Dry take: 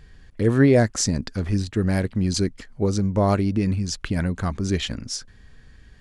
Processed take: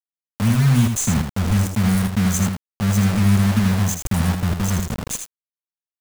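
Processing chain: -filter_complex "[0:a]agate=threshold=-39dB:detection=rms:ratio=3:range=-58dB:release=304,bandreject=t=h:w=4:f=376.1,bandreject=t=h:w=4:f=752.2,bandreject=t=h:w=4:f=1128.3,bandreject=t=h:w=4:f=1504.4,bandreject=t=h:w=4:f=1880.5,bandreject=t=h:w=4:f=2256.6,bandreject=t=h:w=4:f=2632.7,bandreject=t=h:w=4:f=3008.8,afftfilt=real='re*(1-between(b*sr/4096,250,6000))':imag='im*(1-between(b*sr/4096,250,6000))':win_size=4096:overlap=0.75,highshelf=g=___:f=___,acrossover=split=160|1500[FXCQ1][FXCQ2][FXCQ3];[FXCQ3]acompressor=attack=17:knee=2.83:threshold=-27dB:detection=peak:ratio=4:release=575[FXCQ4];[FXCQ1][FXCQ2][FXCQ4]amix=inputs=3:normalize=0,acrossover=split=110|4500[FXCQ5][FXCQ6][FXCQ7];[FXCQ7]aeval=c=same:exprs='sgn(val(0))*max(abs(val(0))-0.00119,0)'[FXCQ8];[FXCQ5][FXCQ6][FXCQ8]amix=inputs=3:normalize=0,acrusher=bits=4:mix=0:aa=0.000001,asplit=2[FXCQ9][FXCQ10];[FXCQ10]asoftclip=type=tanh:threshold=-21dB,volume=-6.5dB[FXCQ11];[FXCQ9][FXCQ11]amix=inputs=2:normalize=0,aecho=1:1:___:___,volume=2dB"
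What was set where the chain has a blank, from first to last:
5, 5000, 80, 0.473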